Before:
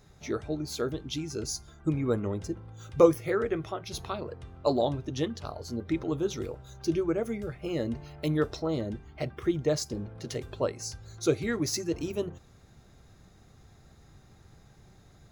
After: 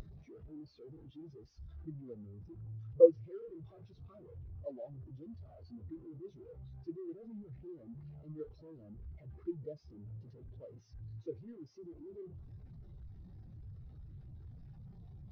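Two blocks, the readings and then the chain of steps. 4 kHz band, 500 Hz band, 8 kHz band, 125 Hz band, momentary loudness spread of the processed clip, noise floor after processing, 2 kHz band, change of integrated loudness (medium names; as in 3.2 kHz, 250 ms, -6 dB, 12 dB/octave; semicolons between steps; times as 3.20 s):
under -30 dB, -7.0 dB, under -40 dB, -12.0 dB, 9 LU, -60 dBFS, under -30 dB, -8.0 dB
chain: one-bit delta coder 32 kbps, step -20.5 dBFS; spectral contrast expander 2.5:1; trim -3.5 dB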